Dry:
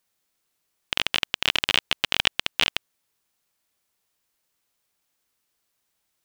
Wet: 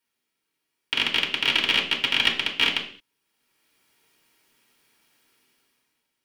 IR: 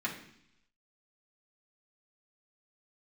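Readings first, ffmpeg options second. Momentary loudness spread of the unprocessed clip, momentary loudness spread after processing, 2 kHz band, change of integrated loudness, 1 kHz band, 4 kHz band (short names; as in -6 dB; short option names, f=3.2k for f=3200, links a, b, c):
4 LU, 7 LU, +2.5 dB, +2.0 dB, 0.0 dB, +2.0 dB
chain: -filter_complex "[0:a]dynaudnorm=f=140:g=11:m=15dB[a];[1:a]atrim=start_sample=2205,afade=t=out:st=0.35:d=0.01,atrim=end_sample=15876,asetrate=57330,aresample=44100[b];[a][b]afir=irnorm=-1:irlink=0,volume=-3dB"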